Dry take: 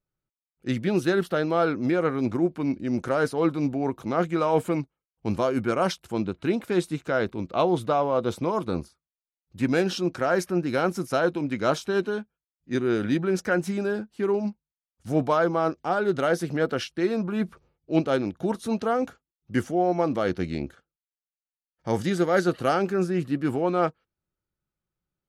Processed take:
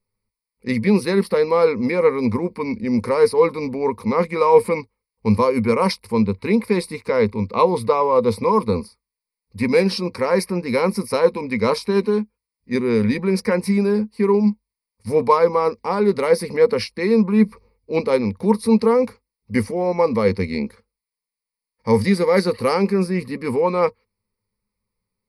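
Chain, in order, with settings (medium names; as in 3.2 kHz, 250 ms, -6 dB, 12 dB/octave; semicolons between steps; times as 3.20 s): rippled EQ curve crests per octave 0.9, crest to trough 18 dB; trim +3.5 dB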